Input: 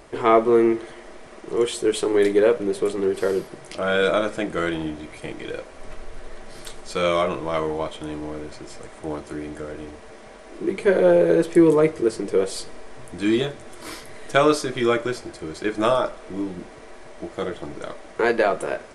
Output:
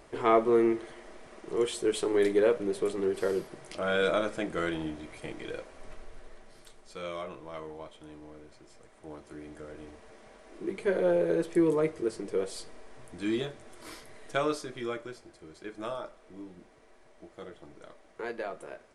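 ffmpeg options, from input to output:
-af "afade=t=out:st=5.55:d=1.12:silence=0.316228,afade=t=in:st=8.92:d=1:silence=0.446684,afade=t=out:st=14.01:d=1.13:silence=0.446684"

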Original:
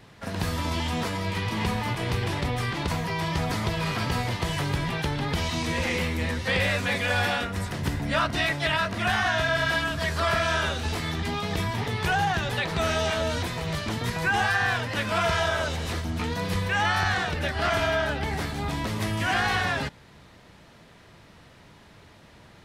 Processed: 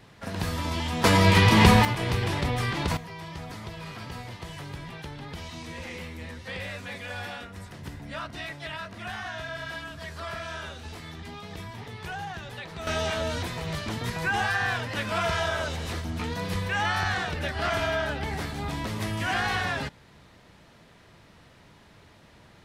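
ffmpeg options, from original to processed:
-af "asetnsamples=n=441:p=0,asendcmd='1.04 volume volume 11dB;1.85 volume volume 0.5dB;2.97 volume volume -11.5dB;12.87 volume volume -2.5dB',volume=-1.5dB"

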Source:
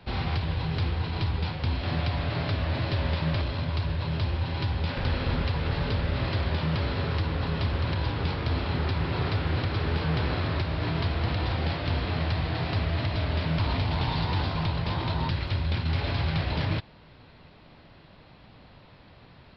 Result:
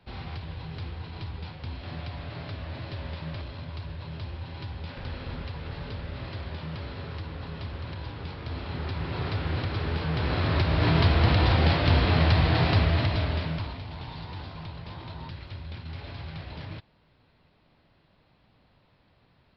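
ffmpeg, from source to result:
-af "volume=6.5dB,afade=t=in:st=8.35:d=1.13:silence=0.446684,afade=t=in:st=10.14:d=0.78:silence=0.375837,afade=t=out:st=12.63:d=0.79:silence=0.375837,afade=t=out:st=13.42:d=0.33:silence=0.334965"

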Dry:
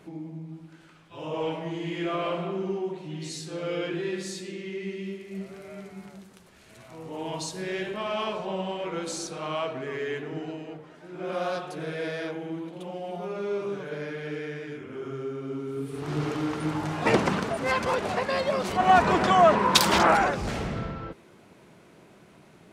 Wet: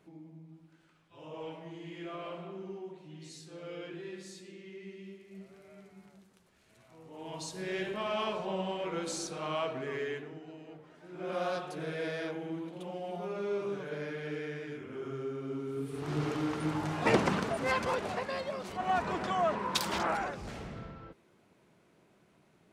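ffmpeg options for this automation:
-af "volume=6.5dB,afade=t=in:st=7.13:d=0.67:silence=0.354813,afade=t=out:st=9.99:d=0.41:silence=0.298538,afade=t=in:st=10.4:d=1:silence=0.316228,afade=t=out:st=17.63:d=0.94:silence=0.398107"

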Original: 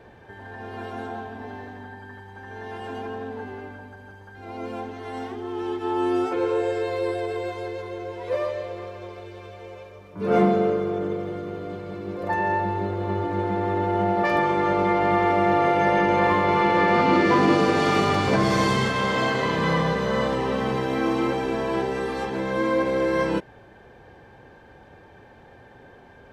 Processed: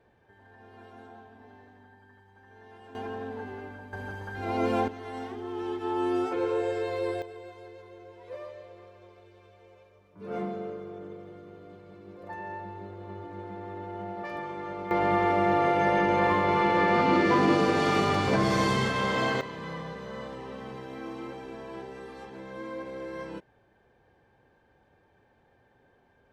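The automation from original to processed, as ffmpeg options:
-af "asetnsamples=n=441:p=0,asendcmd='2.95 volume volume -3.5dB;3.93 volume volume 6.5dB;4.88 volume volume -4.5dB;7.22 volume volume -15dB;14.91 volume volume -4dB;19.41 volume volume -15.5dB',volume=-15.5dB"

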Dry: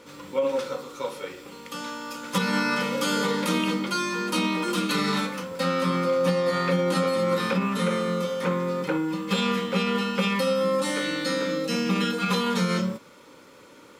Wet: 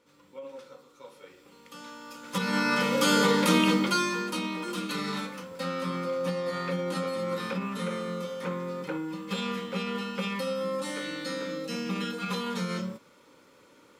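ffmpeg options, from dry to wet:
-af "volume=2.5dB,afade=t=in:st=1:d=1.24:silence=0.334965,afade=t=in:st=2.24:d=0.86:silence=0.298538,afade=t=out:st=3.83:d=0.55:silence=0.316228"

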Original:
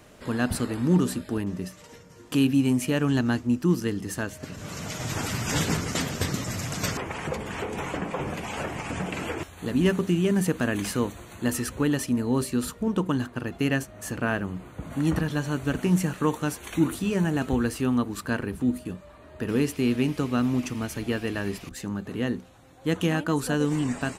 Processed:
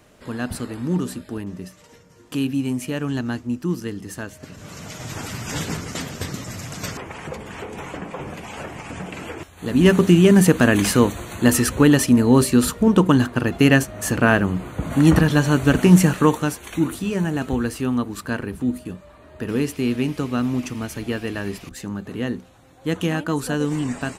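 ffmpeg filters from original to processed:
-af "volume=10.5dB,afade=t=in:st=9.54:d=0.48:silence=0.251189,afade=t=out:st=16.08:d=0.53:silence=0.375837"

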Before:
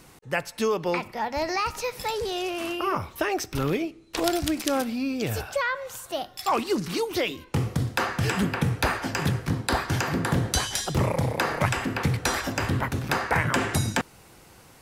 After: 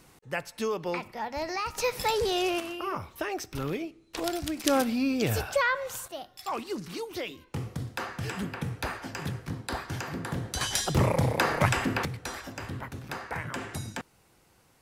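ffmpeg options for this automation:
-af "asetnsamples=n=441:p=0,asendcmd='1.78 volume volume 2dB;2.6 volume volume -6.5dB;4.64 volume volume 1dB;6.08 volume volume -9dB;10.61 volume volume 0dB;12.05 volume volume -11.5dB',volume=-5.5dB"

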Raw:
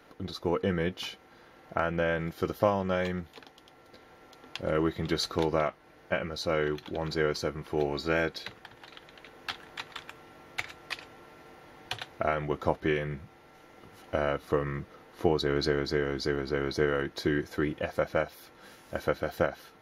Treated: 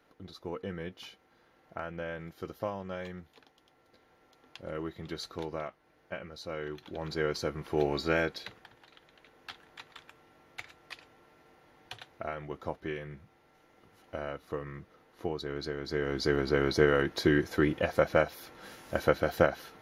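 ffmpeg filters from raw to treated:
-af "volume=13dB,afade=t=in:st=6.6:d=1.33:silence=0.281838,afade=t=out:st=7.93:d=0.92:silence=0.316228,afade=t=in:st=15.79:d=0.61:silence=0.251189"

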